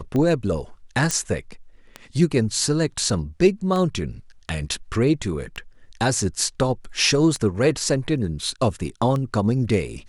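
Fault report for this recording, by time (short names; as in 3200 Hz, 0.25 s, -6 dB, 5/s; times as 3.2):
tick 33 1/3 rpm -15 dBFS
1.11 pop -7 dBFS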